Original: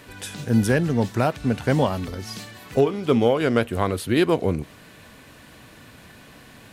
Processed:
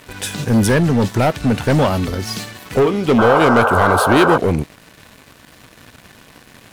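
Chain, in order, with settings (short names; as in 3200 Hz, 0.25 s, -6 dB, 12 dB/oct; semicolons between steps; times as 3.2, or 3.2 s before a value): sample leveller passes 3; painted sound noise, 3.18–4.38, 400–1600 Hz -14 dBFS; gain -1.5 dB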